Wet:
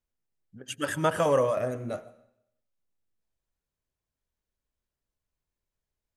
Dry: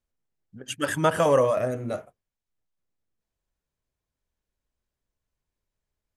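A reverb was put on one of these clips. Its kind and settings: digital reverb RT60 0.78 s, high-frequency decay 0.95×, pre-delay 70 ms, DRR 18.5 dB; gain -3.5 dB

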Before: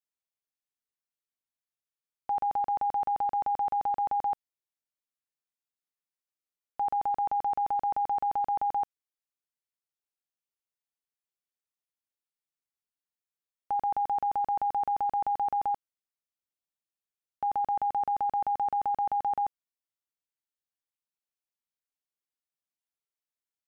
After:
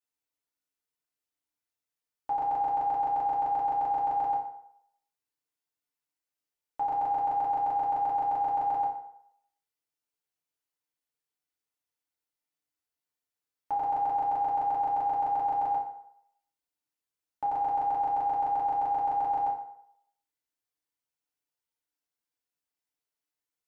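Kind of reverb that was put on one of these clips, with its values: FDN reverb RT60 0.72 s, low-frequency decay 0.75×, high-frequency decay 0.7×, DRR -4.5 dB; gain -3 dB

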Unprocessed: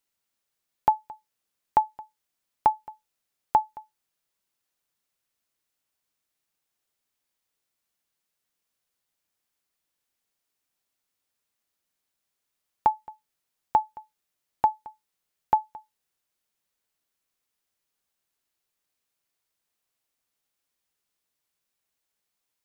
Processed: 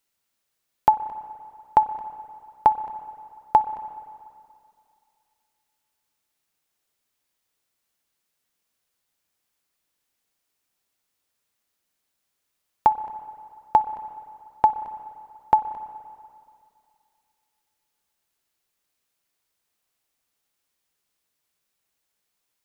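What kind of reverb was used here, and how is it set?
spring tank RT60 2.4 s, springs 30/47/59 ms, chirp 75 ms, DRR 13 dB; gain +4 dB

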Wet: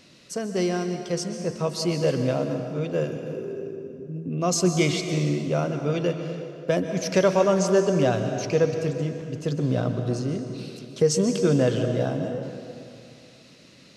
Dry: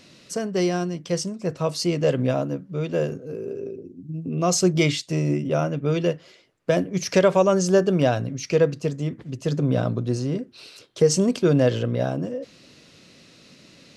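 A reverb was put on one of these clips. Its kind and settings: plate-style reverb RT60 2.5 s, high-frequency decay 0.75×, pre-delay 0.115 s, DRR 6 dB; gain -2.5 dB

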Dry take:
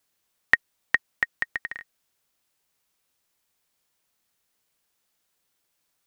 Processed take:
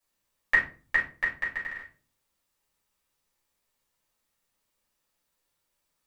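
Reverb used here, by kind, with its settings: shoebox room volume 220 m³, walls furnished, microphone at 5.6 m; gain -12.5 dB

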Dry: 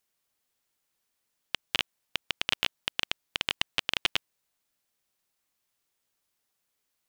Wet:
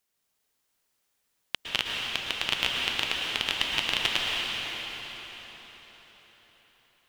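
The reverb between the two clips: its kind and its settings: plate-style reverb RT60 4.8 s, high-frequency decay 0.85×, pre-delay 0.1 s, DRR -2.5 dB

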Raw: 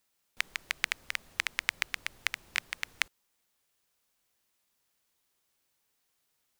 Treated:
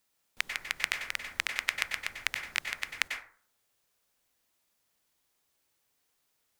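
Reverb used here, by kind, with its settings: plate-style reverb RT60 0.5 s, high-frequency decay 0.45×, pre-delay 85 ms, DRR 4 dB

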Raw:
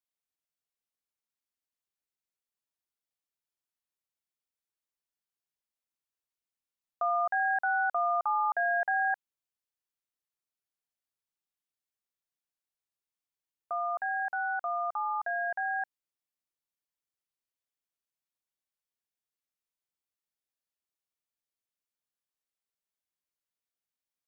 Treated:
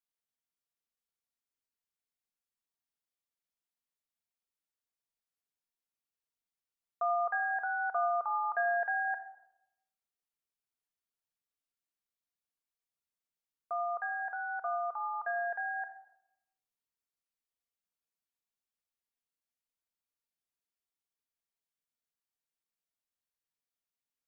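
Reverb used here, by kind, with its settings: shoebox room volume 3200 m³, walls furnished, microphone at 1.7 m; gain -4.5 dB

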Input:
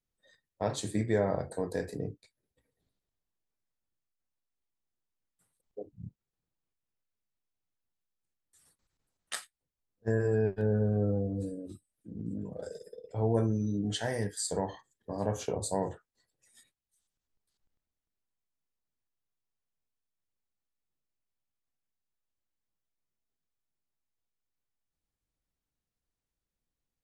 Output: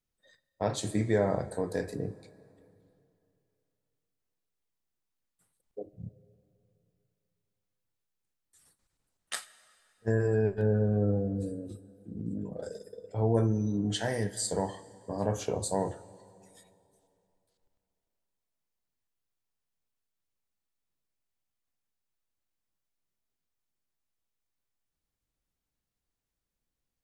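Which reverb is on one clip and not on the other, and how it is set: plate-style reverb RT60 2.8 s, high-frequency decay 0.75×, DRR 16.5 dB; gain +1.5 dB

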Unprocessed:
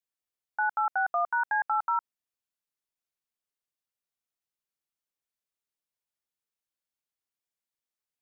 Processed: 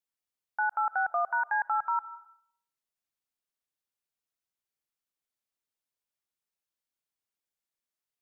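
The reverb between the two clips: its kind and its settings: digital reverb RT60 0.66 s, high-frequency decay 0.5×, pre-delay 0.12 s, DRR 17.5 dB; gain -1 dB

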